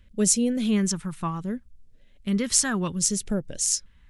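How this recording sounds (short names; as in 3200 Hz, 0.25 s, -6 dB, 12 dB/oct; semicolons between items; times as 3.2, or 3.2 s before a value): phasing stages 2, 0.66 Hz, lowest notch 530–1100 Hz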